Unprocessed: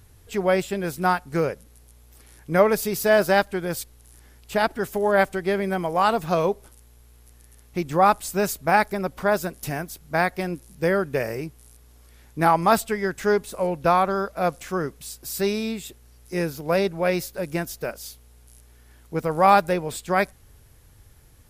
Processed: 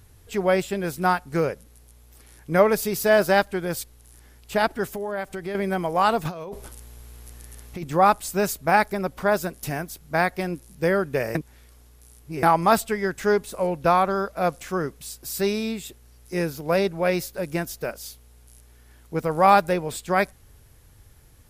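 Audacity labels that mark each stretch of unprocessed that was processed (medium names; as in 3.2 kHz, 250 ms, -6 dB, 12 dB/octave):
4.900000	5.550000	compression 3:1, threshold -29 dBFS
6.250000	7.840000	compressor with a negative ratio -32 dBFS
11.350000	12.430000	reverse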